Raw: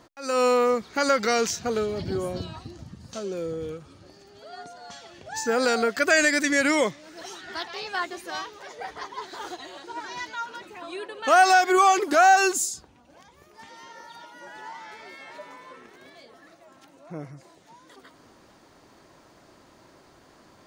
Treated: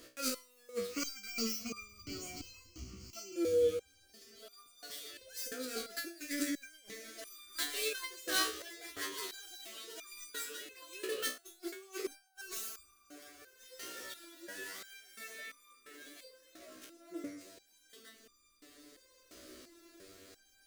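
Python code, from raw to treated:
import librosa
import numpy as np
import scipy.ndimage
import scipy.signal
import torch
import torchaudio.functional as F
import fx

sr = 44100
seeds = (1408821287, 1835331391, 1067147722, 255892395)

y = fx.dead_time(x, sr, dead_ms=0.064)
y = fx.fixed_phaser(y, sr, hz=2500.0, stages=8, at=(0.87, 3.36))
y = fx.rev_double_slope(y, sr, seeds[0], early_s=0.32, late_s=4.6, knee_db=-18, drr_db=16.5)
y = fx.over_compress(y, sr, threshold_db=-29.0, ratio=-0.5)
y = fx.high_shelf(y, sr, hz=3700.0, db=7.5)
y = fx.fixed_phaser(y, sr, hz=360.0, stages=4)
y = fx.resonator_held(y, sr, hz=2.9, low_hz=63.0, high_hz=1200.0)
y = y * 10.0 ** (3.5 / 20.0)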